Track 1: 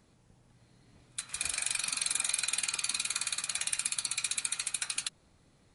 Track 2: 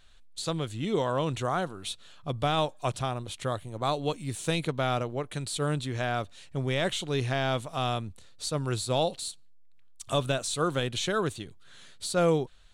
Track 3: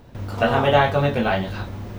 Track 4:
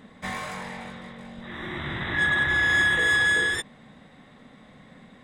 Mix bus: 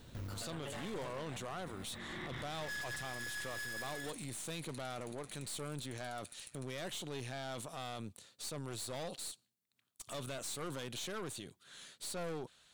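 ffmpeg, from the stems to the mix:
-filter_complex "[0:a]acompressor=threshold=-41dB:ratio=1.5,tremolo=f=120:d=0.947,adelay=1800,volume=-11.5dB[a];[1:a]highpass=150,volume=0dB[b];[2:a]acompressor=threshold=-27dB:ratio=6,equalizer=f=760:t=o:w=0.77:g=-5.5,volume=-6dB,afade=t=out:st=1.12:d=0.28:silence=0.266073[c];[3:a]asoftclip=type=hard:threshold=-27dB,adelay=500,volume=-7dB[d];[a][b][c][d]amix=inputs=4:normalize=0,highshelf=f=6k:g=8.5,aeval=exprs='(tanh(28.2*val(0)+0.6)-tanh(0.6))/28.2':c=same,alimiter=level_in=10.5dB:limit=-24dB:level=0:latency=1:release=22,volume=-10.5dB"

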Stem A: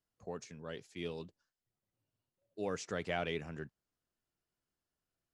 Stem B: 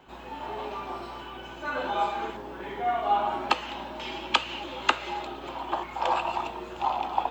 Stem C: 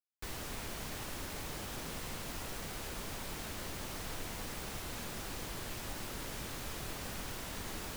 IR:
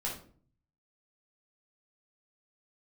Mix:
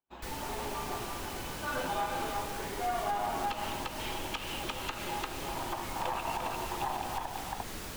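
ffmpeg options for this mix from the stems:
-filter_complex "[1:a]aeval=exprs='(tanh(4.47*val(0)+0.65)-tanh(0.65))/4.47':c=same,volume=-1dB,asplit=2[a][b];[b]volume=-5.5dB[c];[2:a]volume=1dB[d];[c]aecho=0:1:347:1[e];[a][d][e]amix=inputs=3:normalize=0,agate=range=-36dB:threshold=-50dB:ratio=16:detection=peak,alimiter=limit=-22.5dB:level=0:latency=1:release=123"

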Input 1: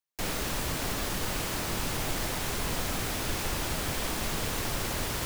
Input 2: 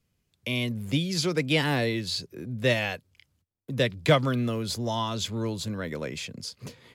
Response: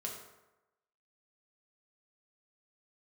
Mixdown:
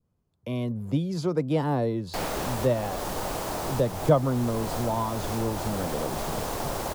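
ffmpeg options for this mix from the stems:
-filter_complex "[0:a]equalizer=f=730:w=0.77:g=11,adelay=1950,volume=-2dB[a];[1:a]highshelf=f=1.5k:t=q:w=1.5:g=-12.5,volume=0.5dB,asplit=2[b][c];[c]apad=whole_len=317639[d];[a][d]sidechaincompress=threshold=-29dB:ratio=4:attack=40:release=373[e];[e][b]amix=inputs=2:normalize=0,adynamicequalizer=threshold=0.00631:dfrequency=2200:dqfactor=0.83:tfrequency=2200:tqfactor=0.83:attack=5:release=100:ratio=0.375:range=3:mode=cutabove:tftype=bell"

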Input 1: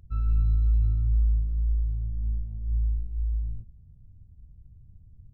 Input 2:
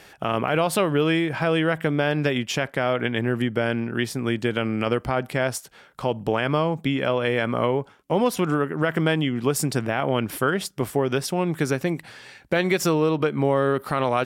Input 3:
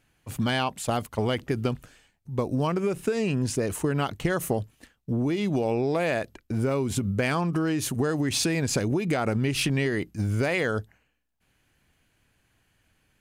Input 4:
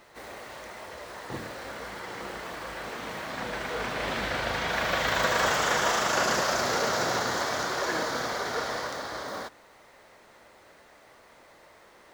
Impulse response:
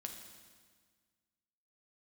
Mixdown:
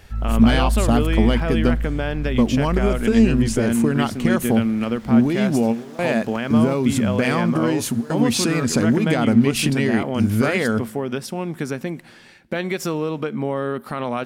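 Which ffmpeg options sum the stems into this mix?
-filter_complex "[0:a]volume=2dB[a];[1:a]volume=-4.5dB,asplit=3[b][c][d];[c]volume=-15.5dB[e];[2:a]volume=3dB,asplit=2[f][g];[g]volume=-16dB[h];[3:a]asoftclip=type=tanh:threshold=-37.5dB,volume=-11dB[i];[d]apad=whole_len=582532[j];[f][j]sidechaingate=range=-33dB:threshold=-49dB:ratio=16:detection=peak[k];[4:a]atrim=start_sample=2205[l];[e][h]amix=inputs=2:normalize=0[m];[m][l]afir=irnorm=-1:irlink=0[n];[a][b][k][i][n]amix=inputs=5:normalize=0,equalizer=f=230:w=6.6:g=13"

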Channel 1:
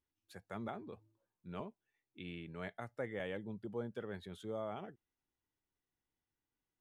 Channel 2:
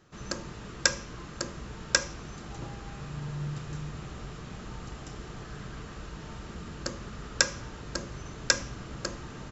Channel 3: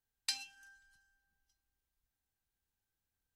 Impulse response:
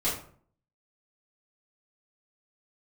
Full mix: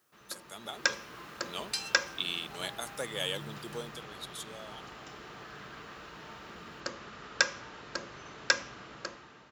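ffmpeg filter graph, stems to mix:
-filter_complex "[0:a]aexciter=amount=9.8:drive=6.6:freq=3.1k,volume=-3.5dB,afade=t=out:st=3.72:d=0.32:silence=0.266073,asplit=2[a][b];[1:a]lowpass=4.2k,volume=-9dB[c];[2:a]adelay=1450,volume=-4.5dB[d];[b]apad=whole_len=211863[e];[d][e]sidechaincompress=threshold=-53dB:ratio=8:attack=25:release=232[f];[a][c][f]amix=inputs=3:normalize=0,highpass=f=710:p=1,dynaudnorm=f=290:g=5:m=11dB"

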